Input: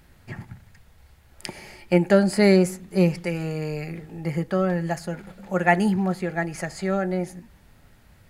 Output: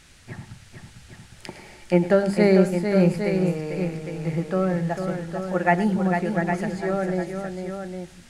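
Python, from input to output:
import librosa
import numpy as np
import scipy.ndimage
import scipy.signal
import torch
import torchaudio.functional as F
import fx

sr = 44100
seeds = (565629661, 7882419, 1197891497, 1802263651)

y = fx.dmg_noise_band(x, sr, seeds[0], low_hz=1400.0, high_hz=9900.0, level_db=-49.0)
y = fx.high_shelf(y, sr, hz=3000.0, db=-10.0)
y = fx.hum_notches(y, sr, base_hz=50, count=4)
y = fx.echo_multitap(y, sr, ms=(106, 449, 808), db=(-14.5, -6.5, -8.0))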